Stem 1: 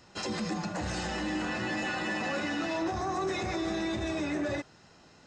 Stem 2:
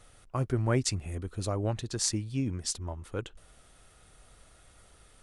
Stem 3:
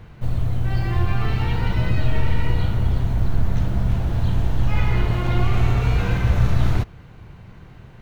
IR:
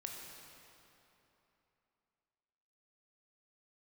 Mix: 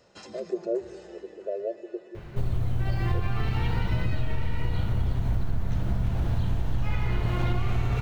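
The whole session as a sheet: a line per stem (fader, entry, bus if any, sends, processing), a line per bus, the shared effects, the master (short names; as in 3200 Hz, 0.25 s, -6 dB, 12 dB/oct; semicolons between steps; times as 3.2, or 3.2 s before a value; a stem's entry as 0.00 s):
-5.5 dB, 0.00 s, no send, compressor 3:1, threshold -36 dBFS, peak gain reduction 6.5 dB; auto duck -18 dB, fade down 2.00 s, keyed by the second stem
+3.0 dB, 0.00 s, send -10 dB, FFT band-pass 340–690 Hz
+0.5 dB, 2.15 s, no send, dry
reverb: on, RT60 3.2 s, pre-delay 16 ms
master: compressor, threshold -21 dBFS, peak gain reduction 10.5 dB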